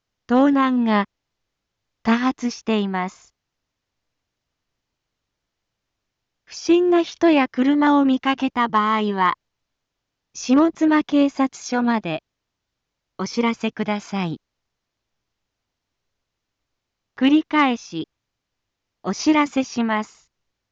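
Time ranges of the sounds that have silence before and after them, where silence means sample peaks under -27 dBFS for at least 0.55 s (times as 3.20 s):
2.05–3.08 s
6.55–9.33 s
10.37–12.18 s
13.19–14.35 s
17.18–18.04 s
19.05–20.02 s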